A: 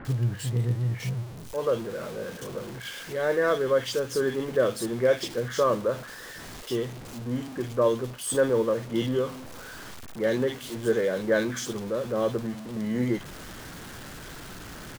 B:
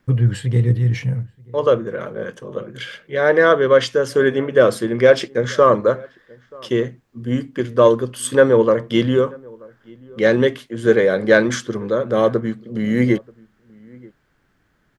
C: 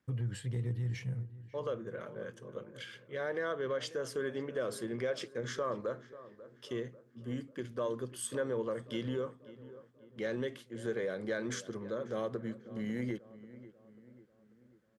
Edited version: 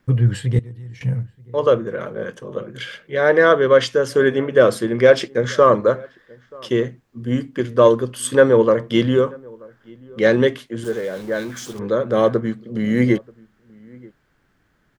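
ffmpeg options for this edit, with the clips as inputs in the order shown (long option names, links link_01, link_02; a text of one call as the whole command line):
ffmpeg -i take0.wav -i take1.wav -i take2.wav -filter_complex "[1:a]asplit=3[link_01][link_02][link_03];[link_01]atrim=end=0.592[link_04];[2:a]atrim=start=0.588:end=1.012[link_05];[link_02]atrim=start=1.008:end=10.842[link_06];[0:a]atrim=start=10.838:end=11.792[link_07];[link_03]atrim=start=11.788[link_08];[link_04][link_05]acrossfade=duration=0.004:curve1=hsin:curve2=hsin[link_09];[link_09][link_06]acrossfade=duration=0.004:curve1=hsin:curve2=hsin[link_10];[link_10][link_07]acrossfade=duration=0.004:curve1=hsin:curve2=hsin[link_11];[link_11][link_08]acrossfade=duration=0.004:curve1=hsin:curve2=hsin" out.wav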